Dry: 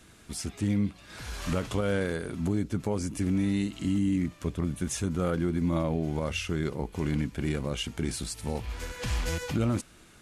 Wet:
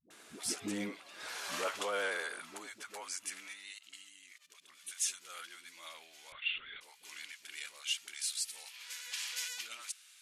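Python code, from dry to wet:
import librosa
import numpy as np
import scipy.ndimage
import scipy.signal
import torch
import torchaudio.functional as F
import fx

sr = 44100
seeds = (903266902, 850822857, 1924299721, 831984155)

y = fx.low_shelf(x, sr, hz=270.0, db=-8.5)
y = fx.level_steps(y, sr, step_db=19, at=(3.43, 4.69))
y = fx.filter_sweep_highpass(y, sr, from_hz=330.0, to_hz=2700.0, start_s=0.58, end_s=4.02, q=0.8)
y = fx.vibrato(y, sr, rate_hz=11.0, depth_cents=32.0)
y = fx.dispersion(y, sr, late='highs', ms=105.0, hz=350.0)
y = fx.lpc_vocoder(y, sr, seeds[0], excitation='whisper', order=16, at=(6.32, 6.81))
y = y * 10.0 ** (1.0 / 20.0)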